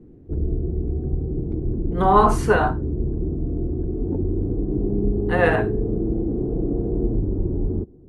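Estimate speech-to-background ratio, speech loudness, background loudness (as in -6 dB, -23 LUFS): 5.5 dB, -20.0 LUFS, -25.5 LUFS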